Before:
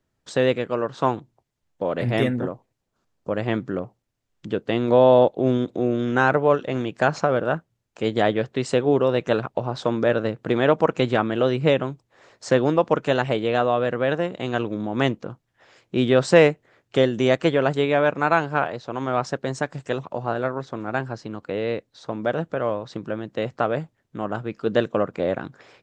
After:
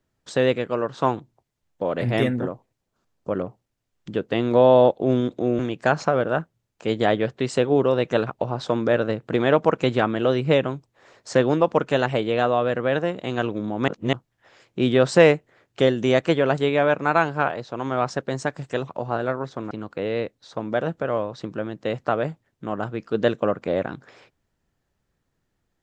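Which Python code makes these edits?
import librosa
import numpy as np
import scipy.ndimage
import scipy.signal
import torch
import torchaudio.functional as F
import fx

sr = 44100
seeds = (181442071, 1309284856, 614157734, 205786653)

y = fx.edit(x, sr, fx.cut(start_s=3.35, length_s=0.37),
    fx.cut(start_s=5.96, length_s=0.79),
    fx.reverse_span(start_s=15.04, length_s=0.25),
    fx.cut(start_s=20.87, length_s=0.36), tone=tone)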